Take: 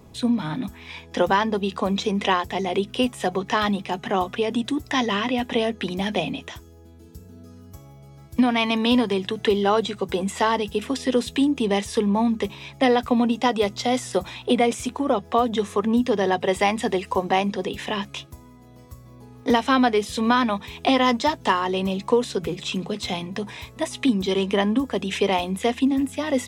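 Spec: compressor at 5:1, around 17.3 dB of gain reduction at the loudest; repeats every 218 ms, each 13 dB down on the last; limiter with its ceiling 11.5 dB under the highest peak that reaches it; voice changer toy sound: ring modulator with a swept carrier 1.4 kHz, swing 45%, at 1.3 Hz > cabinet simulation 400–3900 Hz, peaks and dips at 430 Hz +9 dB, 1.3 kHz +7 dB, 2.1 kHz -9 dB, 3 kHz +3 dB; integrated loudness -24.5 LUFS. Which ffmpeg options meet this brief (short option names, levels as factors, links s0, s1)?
-af "acompressor=threshold=0.0178:ratio=5,alimiter=level_in=1.78:limit=0.0631:level=0:latency=1,volume=0.562,aecho=1:1:218|436|654:0.224|0.0493|0.0108,aeval=exprs='val(0)*sin(2*PI*1400*n/s+1400*0.45/1.3*sin(2*PI*1.3*n/s))':c=same,highpass=400,equalizer=f=430:t=q:w=4:g=9,equalizer=f=1300:t=q:w=4:g=7,equalizer=f=2100:t=q:w=4:g=-9,equalizer=f=3000:t=q:w=4:g=3,lowpass=f=3900:w=0.5412,lowpass=f=3900:w=1.3066,volume=5.96"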